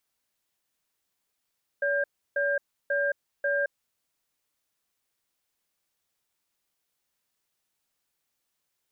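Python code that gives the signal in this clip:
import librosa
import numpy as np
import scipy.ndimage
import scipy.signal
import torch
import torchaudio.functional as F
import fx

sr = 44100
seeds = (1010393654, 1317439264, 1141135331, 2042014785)

y = fx.cadence(sr, length_s=2.12, low_hz=569.0, high_hz=1600.0, on_s=0.22, off_s=0.32, level_db=-26.0)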